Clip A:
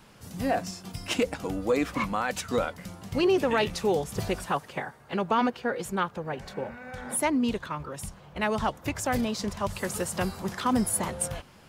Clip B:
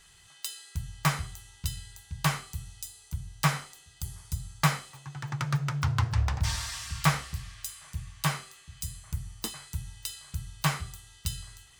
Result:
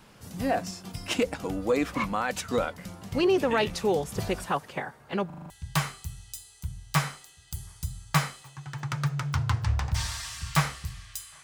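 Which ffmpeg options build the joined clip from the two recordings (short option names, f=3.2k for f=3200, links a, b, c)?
-filter_complex "[0:a]apad=whole_dur=11.43,atrim=end=11.43,asplit=6[a][b][c][d][e][f];[a]atrim=end=5.302[g];[b]atrim=start=5.258:end=5.302[h];[c]atrim=start=5.258:end=5.302[i];[d]atrim=start=5.258:end=5.302[j];[e]atrim=start=5.258:end=5.302[k];[f]atrim=start=5.258:end=5.302[l];[1:a]atrim=start=1.988:end=7.92[m];[g][h]acrossfade=d=0.004:c1=hsin:c2=hsin[n];[n][i]acrossfade=d=0.004:c1=hsin:c2=hsin[o];[o][j]acrossfade=d=0.004:c1=hsin:c2=hsin[p];[p][k]acrossfade=d=0.004:c1=hsin:c2=hsin[q];[q][l]acrossfade=d=0.004:c1=hsin:c2=hsin[r];[r][m]acrossfade=d=0.004:c1=hsin:c2=hsin"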